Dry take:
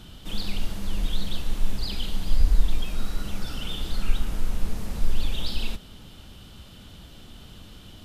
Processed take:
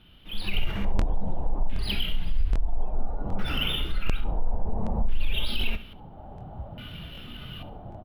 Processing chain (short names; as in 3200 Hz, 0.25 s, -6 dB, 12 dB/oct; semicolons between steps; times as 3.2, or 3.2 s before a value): AGC gain up to 14 dB; limiter -12 dBFS, peak gain reduction 11 dB; LFO low-pass square 0.59 Hz 820–2800 Hz; spectral noise reduction 8 dB; on a send: feedback echo 68 ms, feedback 33%, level -15 dB; on the sum: crackling interface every 0.77 s, samples 1024, repeat, from 0.97; decimation joined by straight lines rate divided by 3×; gain -3.5 dB